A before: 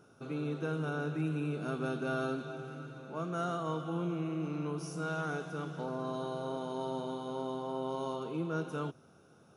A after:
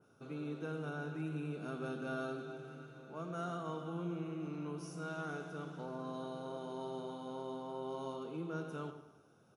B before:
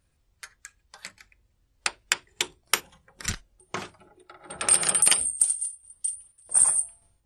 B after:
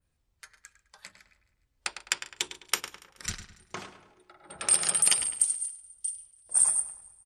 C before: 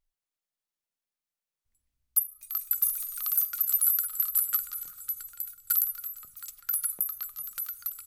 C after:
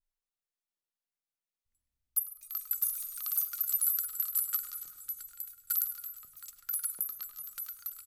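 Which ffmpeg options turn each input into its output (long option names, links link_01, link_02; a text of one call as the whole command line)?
ffmpeg -i in.wav -filter_complex "[0:a]asplit=2[link_01][link_02];[link_02]adelay=104,lowpass=frequency=3500:poles=1,volume=-9.5dB,asplit=2[link_03][link_04];[link_04]adelay=104,lowpass=frequency=3500:poles=1,volume=0.43,asplit=2[link_05][link_06];[link_06]adelay=104,lowpass=frequency=3500:poles=1,volume=0.43,asplit=2[link_07][link_08];[link_08]adelay=104,lowpass=frequency=3500:poles=1,volume=0.43,asplit=2[link_09][link_10];[link_10]adelay=104,lowpass=frequency=3500:poles=1,volume=0.43[link_11];[link_03][link_05][link_07][link_09][link_11]amix=inputs=5:normalize=0[link_12];[link_01][link_12]amix=inputs=2:normalize=0,adynamicequalizer=threshold=0.0112:dfrequency=5800:dqfactor=0.7:tfrequency=5800:tqfactor=0.7:attack=5:release=100:ratio=0.375:range=2.5:mode=boostabove:tftype=bell,asplit=2[link_13][link_14];[link_14]aecho=0:1:142|284|426|568:0.0794|0.0405|0.0207|0.0105[link_15];[link_13][link_15]amix=inputs=2:normalize=0,volume=-6.5dB" out.wav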